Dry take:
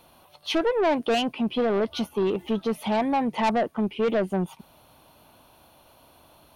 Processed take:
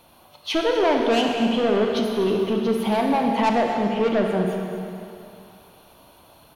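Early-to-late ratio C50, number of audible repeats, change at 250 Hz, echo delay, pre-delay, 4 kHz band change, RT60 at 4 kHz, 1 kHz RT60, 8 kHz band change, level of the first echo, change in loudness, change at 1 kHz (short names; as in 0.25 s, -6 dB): 2.0 dB, 1, +4.0 dB, 0.244 s, 26 ms, +4.0 dB, 2.5 s, 2.7 s, +4.0 dB, -14.0 dB, +3.5 dB, +4.0 dB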